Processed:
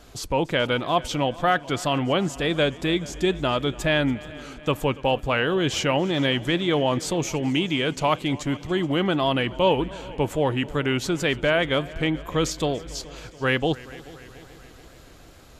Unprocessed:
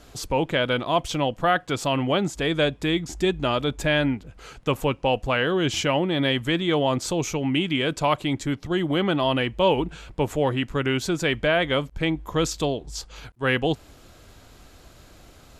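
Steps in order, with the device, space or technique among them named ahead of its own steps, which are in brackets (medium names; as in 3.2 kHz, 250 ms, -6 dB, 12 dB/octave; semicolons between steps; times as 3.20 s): multi-head tape echo (multi-head delay 143 ms, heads second and third, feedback 59%, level -21 dB; wow and flutter)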